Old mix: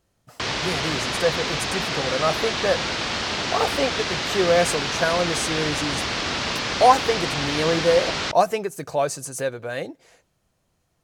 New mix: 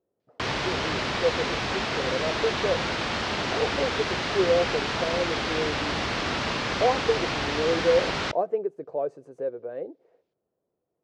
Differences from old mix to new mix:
speech: add band-pass filter 430 Hz, Q 2.5; master: add treble shelf 3.9 kHz -10.5 dB

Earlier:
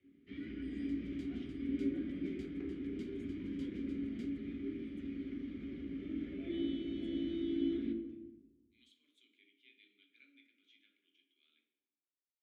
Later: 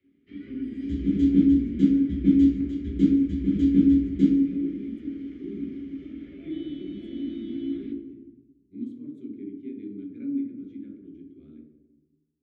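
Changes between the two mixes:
speech: remove resonant high-pass 3 kHz, resonance Q 2.7; second sound: send on

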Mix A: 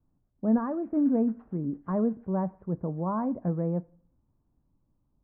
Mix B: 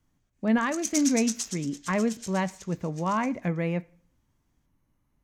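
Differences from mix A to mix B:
speech: add peaking EQ 2.1 kHz +7.5 dB 0.38 oct; master: remove Bessel low-pass 790 Hz, order 6

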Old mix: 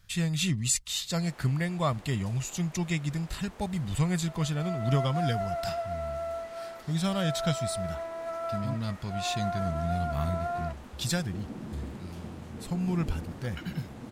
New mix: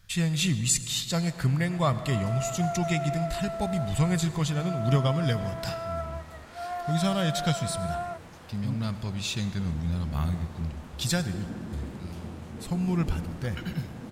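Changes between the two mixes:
second sound: entry -2.55 s; reverb: on, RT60 2.3 s

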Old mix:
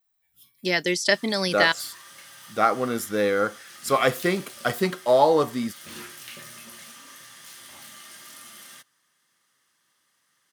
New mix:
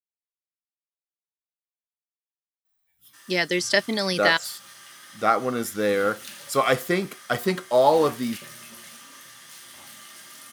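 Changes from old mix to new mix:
speech: entry +2.65 s; background: entry +2.05 s

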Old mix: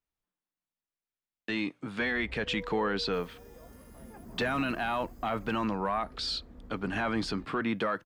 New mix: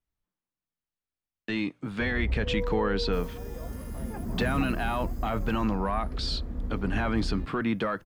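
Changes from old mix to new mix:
background +9.0 dB; master: add bass shelf 180 Hz +9.5 dB

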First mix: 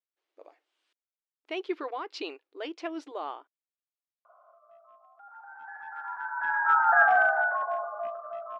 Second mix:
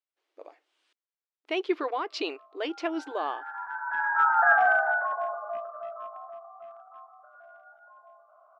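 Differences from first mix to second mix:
speech +5.0 dB; background: entry -2.50 s

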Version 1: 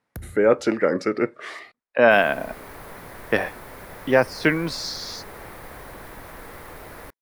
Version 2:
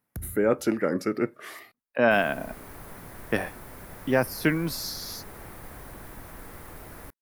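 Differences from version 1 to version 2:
speech: remove low-pass 8.5 kHz 24 dB/octave; master: add graphic EQ 500/1000/2000/4000 Hz -6/-4/-5/-5 dB

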